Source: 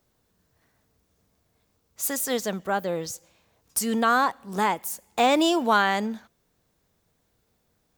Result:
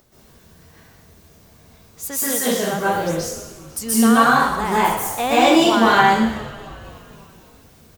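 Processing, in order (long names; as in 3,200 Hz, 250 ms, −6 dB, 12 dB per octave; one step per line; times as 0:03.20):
upward compression, threshold −44 dBFS
on a send: echo with shifted repeats 250 ms, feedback 62%, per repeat −84 Hz, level −18 dB
on the sum: dense smooth reverb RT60 0.82 s, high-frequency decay 1×, pre-delay 115 ms, DRR −9.5 dB
level −2.5 dB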